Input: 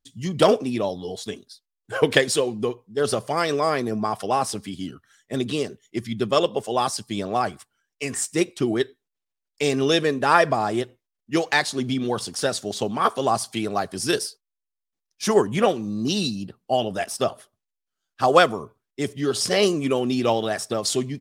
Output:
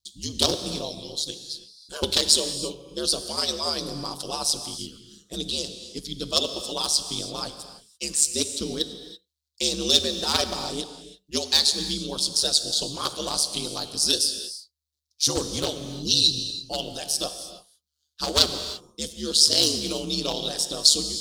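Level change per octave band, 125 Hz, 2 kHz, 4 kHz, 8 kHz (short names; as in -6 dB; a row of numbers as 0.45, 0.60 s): -7.0, -12.0, +8.0, +7.0 dB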